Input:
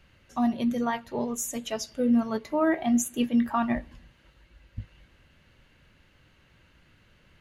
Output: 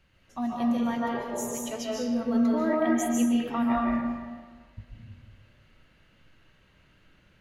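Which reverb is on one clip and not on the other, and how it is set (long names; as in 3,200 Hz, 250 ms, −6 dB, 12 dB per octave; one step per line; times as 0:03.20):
comb and all-pass reverb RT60 1.6 s, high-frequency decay 0.6×, pre-delay 105 ms, DRR −4 dB
level −6 dB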